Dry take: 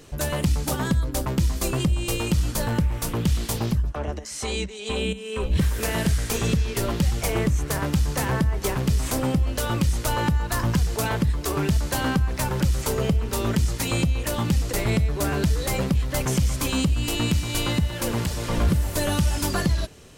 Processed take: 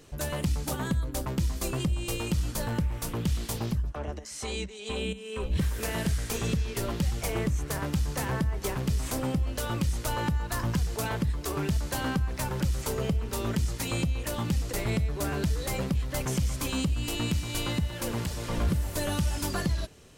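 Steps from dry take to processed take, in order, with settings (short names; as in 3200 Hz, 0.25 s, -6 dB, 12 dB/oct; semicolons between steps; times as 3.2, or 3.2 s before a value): 0.73–1.15 bell 5200 Hz -9 dB 0.21 oct; gain -6 dB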